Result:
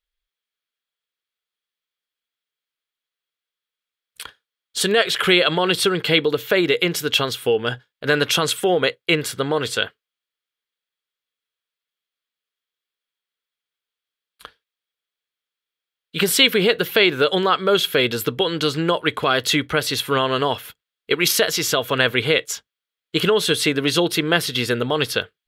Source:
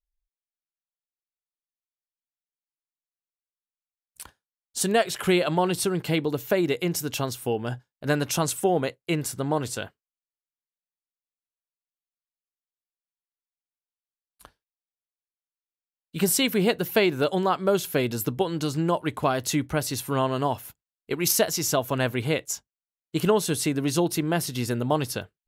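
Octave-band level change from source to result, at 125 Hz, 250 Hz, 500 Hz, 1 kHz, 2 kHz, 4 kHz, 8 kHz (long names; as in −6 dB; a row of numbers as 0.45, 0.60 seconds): +0.5, +2.5, +5.5, +4.0, +11.0, +13.0, +2.0 decibels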